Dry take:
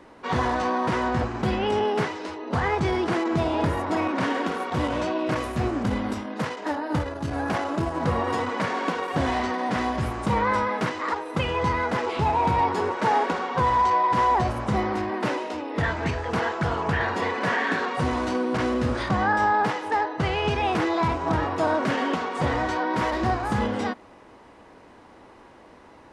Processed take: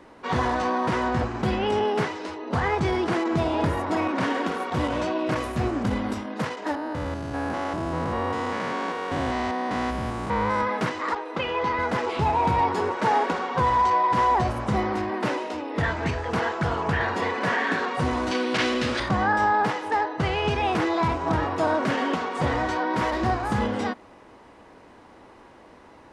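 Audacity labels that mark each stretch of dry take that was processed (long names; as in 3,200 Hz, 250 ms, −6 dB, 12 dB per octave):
6.750000	10.610000	spectrum averaged block by block every 200 ms
11.150000	11.790000	three-way crossover with the lows and the highs turned down lows −14 dB, under 230 Hz, highs −19 dB, over 5,700 Hz
18.310000	19.000000	meter weighting curve D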